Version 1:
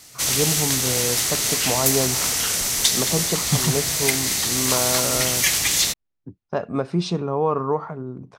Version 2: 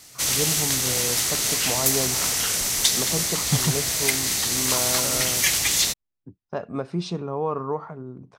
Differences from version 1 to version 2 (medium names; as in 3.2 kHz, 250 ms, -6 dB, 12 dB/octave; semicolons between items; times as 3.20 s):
speech -5.0 dB; reverb: off